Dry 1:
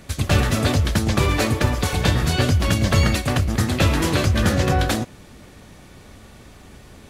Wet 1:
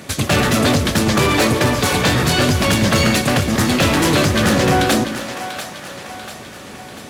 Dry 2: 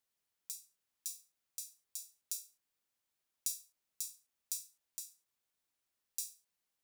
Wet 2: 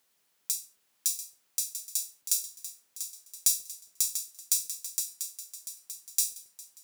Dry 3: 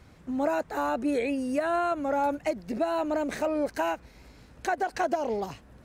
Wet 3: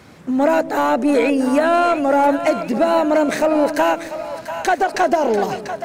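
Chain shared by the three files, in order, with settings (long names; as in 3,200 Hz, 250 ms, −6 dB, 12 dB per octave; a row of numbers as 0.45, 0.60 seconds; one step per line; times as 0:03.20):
high-pass filter 150 Hz 12 dB per octave
soft clipping −20 dBFS
echo with a time of its own for lows and highs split 560 Hz, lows 137 ms, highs 691 ms, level −10 dB
normalise the peak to −6 dBFS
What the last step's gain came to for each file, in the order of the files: +10.0, +14.0, +12.5 decibels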